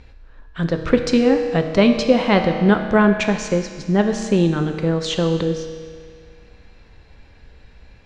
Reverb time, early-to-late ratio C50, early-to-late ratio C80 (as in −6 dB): 2.0 s, 6.5 dB, 8.0 dB